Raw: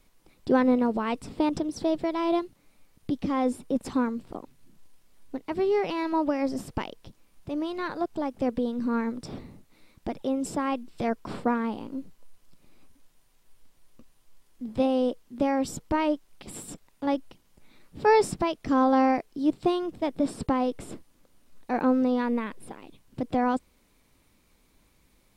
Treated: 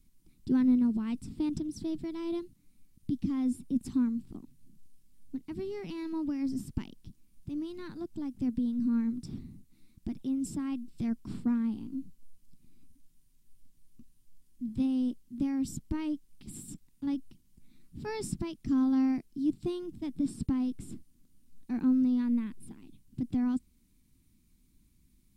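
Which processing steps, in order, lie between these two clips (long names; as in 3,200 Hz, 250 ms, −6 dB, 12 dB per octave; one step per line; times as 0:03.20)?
drawn EQ curve 240 Hz 0 dB, 350 Hz −8 dB, 530 Hz −26 dB, 940 Hz −20 dB, 9,300 Hz −4 dB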